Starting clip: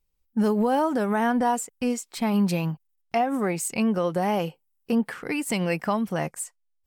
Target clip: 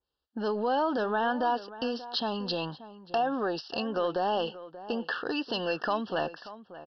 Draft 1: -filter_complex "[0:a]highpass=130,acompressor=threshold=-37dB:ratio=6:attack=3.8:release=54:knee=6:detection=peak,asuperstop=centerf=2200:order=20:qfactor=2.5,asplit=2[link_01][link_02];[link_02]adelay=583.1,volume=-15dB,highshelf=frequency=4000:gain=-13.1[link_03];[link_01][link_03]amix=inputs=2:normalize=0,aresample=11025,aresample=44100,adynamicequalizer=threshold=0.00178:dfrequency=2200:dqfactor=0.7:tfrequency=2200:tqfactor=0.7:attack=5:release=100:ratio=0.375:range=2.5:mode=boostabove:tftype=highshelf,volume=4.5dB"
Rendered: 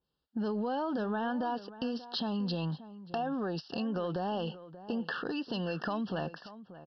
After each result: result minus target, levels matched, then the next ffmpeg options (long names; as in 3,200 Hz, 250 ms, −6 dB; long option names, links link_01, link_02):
125 Hz band +10.0 dB; downward compressor: peak gain reduction +8 dB
-filter_complex "[0:a]highpass=130,acompressor=threshold=-37dB:ratio=6:attack=3.8:release=54:knee=6:detection=peak,asuperstop=centerf=2200:order=20:qfactor=2.5,equalizer=frequency=170:width_type=o:width=1.1:gain=-14,asplit=2[link_01][link_02];[link_02]adelay=583.1,volume=-15dB,highshelf=frequency=4000:gain=-13.1[link_03];[link_01][link_03]amix=inputs=2:normalize=0,aresample=11025,aresample=44100,adynamicequalizer=threshold=0.00178:dfrequency=2200:dqfactor=0.7:tfrequency=2200:tqfactor=0.7:attack=5:release=100:ratio=0.375:range=2.5:mode=boostabove:tftype=highshelf,volume=4.5dB"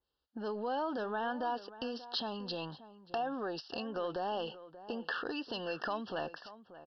downward compressor: peak gain reduction +8 dB
-filter_complex "[0:a]highpass=130,acompressor=threshold=-27.5dB:ratio=6:attack=3.8:release=54:knee=6:detection=peak,asuperstop=centerf=2200:order=20:qfactor=2.5,equalizer=frequency=170:width_type=o:width=1.1:gain=-14,asplit=2[link_01][link_02];[link_02]adelay=583.1,volume=-15dB,highshelf=frequency=4000:gain=-13.1[link_03];[link_01][link_03]amix=inputs=2:normalize=0,aresample=11025,aresample=44100,adynamicequalizer=threshold=0.00178:dfrequency=2200:dqfactor=0.7:tfrequency=2200:tqfactor=0.7:attack=5:release=100:ratio=0.375:range=2.5:mode=boostabove:tftype=highshelf,volume=4.5dB"